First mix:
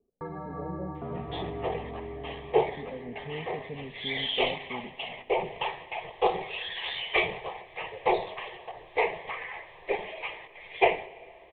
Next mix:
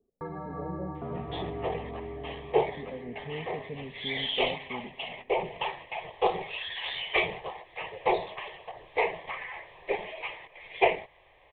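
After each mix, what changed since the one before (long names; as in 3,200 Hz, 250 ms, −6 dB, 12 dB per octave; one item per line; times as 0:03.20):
second sound: send off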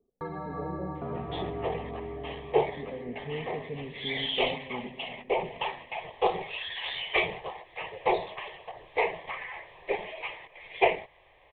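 speech: send +10.0 dB
first sound: remove high-frequency loss of the air 430 metres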